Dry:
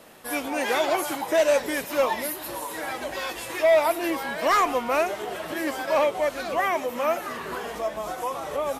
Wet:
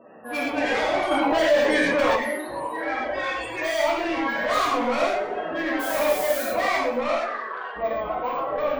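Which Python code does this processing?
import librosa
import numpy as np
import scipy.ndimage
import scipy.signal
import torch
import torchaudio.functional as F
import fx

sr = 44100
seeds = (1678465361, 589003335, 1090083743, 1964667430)

y = np.repeat(scipy.signal.resample_poly(x, 1, 2), 2)[:len(x)]
y = fx.dynamic_eq(y, sr, hz=2000.0, q=1.2, threshold_db=-34.0, ratio=4.0, max_db=3)
y = fx.spec_topn(y, sr, count=32)
y = fx.dmg_noise_colour(y, sr, seeds[0], colour='blue', level_db=-36.0, at=(5.79, 6.41), fade=0.02)
y = 10.0 ** (-26.0 / 20.0) * np.tanh(y / 10.0 ** (-26.0 / 20.0))
y = fx.highpass(y, sr, hz=fx.line((7.08, 360.0), (7.75, 1200.0)), slope=12, at=(7.08, 7.75), fade=0.02)
y = fx.echo_feedback(y, sr, ms=93, feedback_pct=47, wet_db=-15)
y = fx.rev_gated(y, sr, seeds[1], gate_ms=150, shape='flat', drr_db=-5.0)
y = fx.env_flatten(y, sr, amount_pct=50, at=(1.11, 2.16))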